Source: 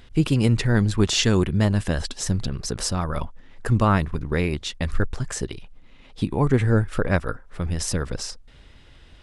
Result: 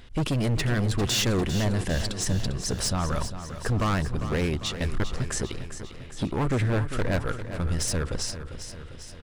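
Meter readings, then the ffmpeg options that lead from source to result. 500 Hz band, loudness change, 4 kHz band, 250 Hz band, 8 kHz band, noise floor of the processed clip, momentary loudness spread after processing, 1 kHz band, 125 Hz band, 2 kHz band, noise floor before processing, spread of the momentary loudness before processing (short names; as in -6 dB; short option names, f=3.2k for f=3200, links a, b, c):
-4.0 dB, -4.0 dB, -1.5 dB, -5.5 dB, -0.5 dB, -42 dBFS, 13 LU, -4.0 dB, -4.5 dB, -3.0 dB, -49 dBFS, 12 LU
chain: -af "asoftclip=type=hard:threshold=-22dB,aecho=1:1:399|798|1197|1596|1995|2394|2793:0.282|0.169|0.101|0.0609|0.0365|0.0219|0.0131"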